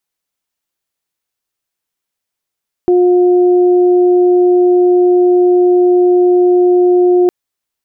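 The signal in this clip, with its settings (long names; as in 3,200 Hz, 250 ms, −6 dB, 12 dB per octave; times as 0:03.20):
steady harmonic partials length 4.41 s, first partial 358 Hz, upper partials −15 dB, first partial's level −6 dB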